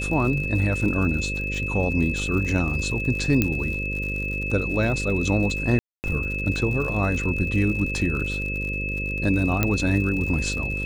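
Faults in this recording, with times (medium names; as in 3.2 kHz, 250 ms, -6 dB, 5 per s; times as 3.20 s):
buzz 50 Hz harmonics 11 -30 dBFS
crackle 87 per s -31 dBFS
whine 2.6 kHz -28 dBFS
3.42 s: pop -7 dBFS
5.79–6.04 s: dropout 249 ms
9.63 s: pop -6 dBFS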